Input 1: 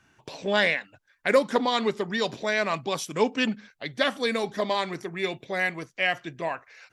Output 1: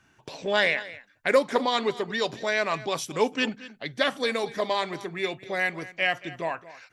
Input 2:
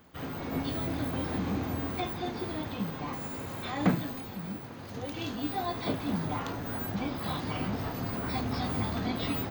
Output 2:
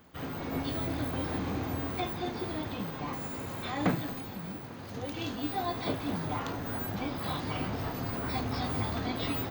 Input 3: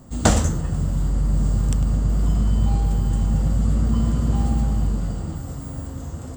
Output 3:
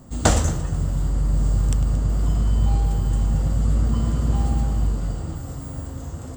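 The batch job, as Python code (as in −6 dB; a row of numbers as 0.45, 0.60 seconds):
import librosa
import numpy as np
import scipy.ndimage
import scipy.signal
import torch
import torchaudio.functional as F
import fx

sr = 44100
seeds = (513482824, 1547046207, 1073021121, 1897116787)

p1 = fx.dynamic_eq(x, sr, hz=200.0, q=2.6, threshold_db=-41.0, ratio=4.0, max_db=-6)
y = p1 + fx.echo_single(p1, sr, ms=226, db=-17.5, dry=0)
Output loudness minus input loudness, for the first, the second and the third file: 0.0, −1.0, −0.5 LU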